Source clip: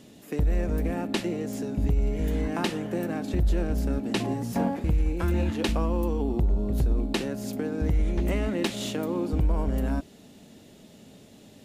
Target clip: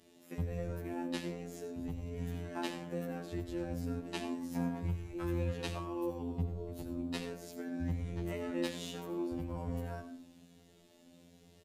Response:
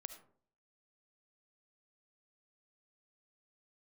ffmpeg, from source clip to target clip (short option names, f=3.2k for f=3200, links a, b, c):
-filter_complex "[1:a]atrim=start_sample=2205,asetrate=37485,aresample=44100[a];[0:a][a]afir=irnorm=-1:irlink=0,afftfilt=real='hypot(re,im)*cos(PI*b)':imag='0':win_size=2048:overlap=0.75,asplit=2[b][c];[c]adelay=6.7,afreqshift=1.2[d];[b][d]amix=inputs=2:normalize=1"